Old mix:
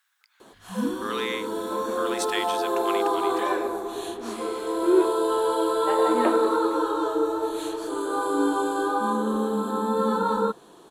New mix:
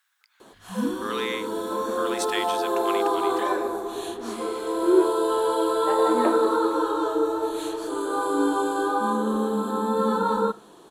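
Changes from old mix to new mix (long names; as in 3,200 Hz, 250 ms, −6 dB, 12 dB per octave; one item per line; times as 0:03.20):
second sound: add high-frequency loss of the air 450 metres
reverb: on, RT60 0.45 s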